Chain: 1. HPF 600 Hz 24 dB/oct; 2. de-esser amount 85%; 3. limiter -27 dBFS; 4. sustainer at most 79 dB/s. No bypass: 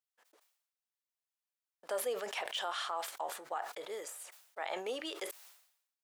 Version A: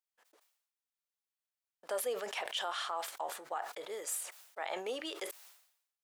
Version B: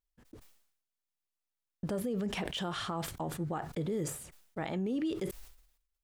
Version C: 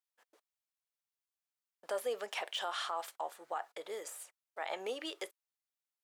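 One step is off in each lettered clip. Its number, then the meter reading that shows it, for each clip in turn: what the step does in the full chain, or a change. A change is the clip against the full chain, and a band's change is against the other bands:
2, momentary loudness spread change -3 LU; 1, 250 Hz band +19.0 dB; 4, crest factor change -3.0 dB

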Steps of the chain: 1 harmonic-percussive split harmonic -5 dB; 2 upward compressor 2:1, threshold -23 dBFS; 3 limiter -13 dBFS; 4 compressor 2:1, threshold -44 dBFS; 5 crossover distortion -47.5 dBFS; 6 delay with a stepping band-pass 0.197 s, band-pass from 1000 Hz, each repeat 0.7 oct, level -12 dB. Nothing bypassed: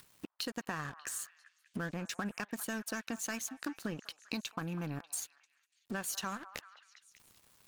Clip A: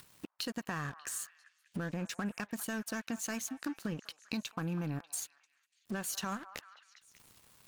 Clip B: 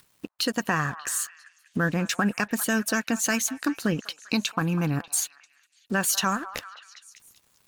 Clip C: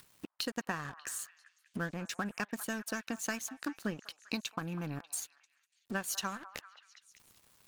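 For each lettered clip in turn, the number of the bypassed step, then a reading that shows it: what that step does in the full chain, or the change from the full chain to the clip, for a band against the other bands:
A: 1, 125 Hz band +3.0 dB; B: 4, mean gain reduction 9.0 dB; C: 3, crest factor change +2.0 dB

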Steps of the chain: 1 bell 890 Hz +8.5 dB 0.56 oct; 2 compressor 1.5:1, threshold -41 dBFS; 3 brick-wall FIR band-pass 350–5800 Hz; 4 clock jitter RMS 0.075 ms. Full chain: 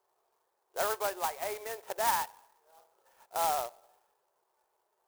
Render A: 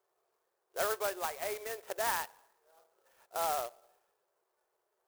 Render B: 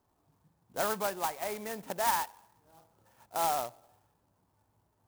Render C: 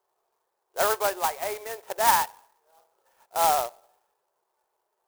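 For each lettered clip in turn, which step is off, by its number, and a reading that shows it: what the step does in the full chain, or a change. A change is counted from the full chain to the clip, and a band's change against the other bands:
1, 1 kHz band -3.0 dB; 3, 250 Hz band +8.5 dB; 2, mean gain reduction 6.0 dB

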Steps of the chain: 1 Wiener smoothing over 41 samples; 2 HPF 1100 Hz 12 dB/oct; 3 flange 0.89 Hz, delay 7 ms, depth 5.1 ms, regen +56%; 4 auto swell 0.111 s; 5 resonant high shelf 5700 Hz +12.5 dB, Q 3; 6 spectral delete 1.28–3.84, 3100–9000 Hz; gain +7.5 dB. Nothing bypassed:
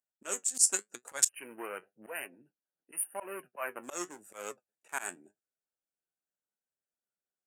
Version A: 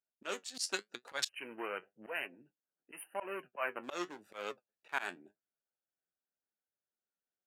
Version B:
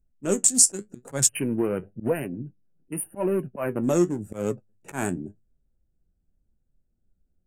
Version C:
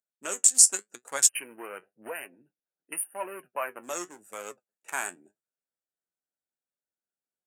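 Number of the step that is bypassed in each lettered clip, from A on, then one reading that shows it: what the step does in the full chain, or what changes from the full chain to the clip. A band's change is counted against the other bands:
5, 8 kHz band -16.5 dB; 2, 125 Hz band +27.0 dB; 4, crest factor change -3.5 dB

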